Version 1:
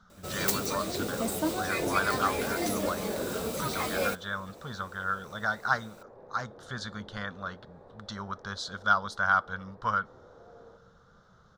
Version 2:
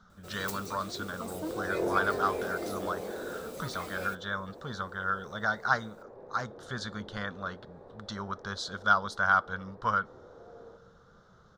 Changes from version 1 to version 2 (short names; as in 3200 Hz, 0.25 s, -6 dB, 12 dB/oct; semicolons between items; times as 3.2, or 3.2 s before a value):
first sound -11.5 dB; master: add bell 370 Hz +4 dB 1 oct